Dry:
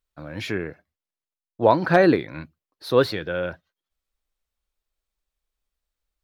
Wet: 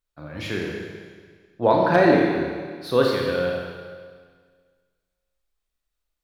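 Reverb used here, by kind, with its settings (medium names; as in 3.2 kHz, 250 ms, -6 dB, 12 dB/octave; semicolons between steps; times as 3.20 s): Schroeder reverb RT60 1.7 s, combs from 26 ms, DRR -1 dB; trim -2.5 dB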